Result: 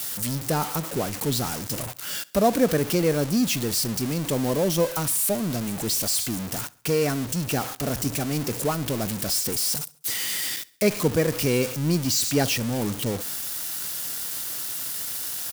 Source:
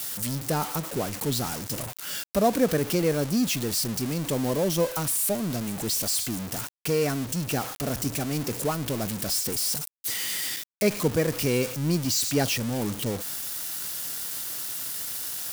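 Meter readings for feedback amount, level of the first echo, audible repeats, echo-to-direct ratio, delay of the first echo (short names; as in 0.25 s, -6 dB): 51%, -23.5 dB, 2, -22.5 dB, 68 ms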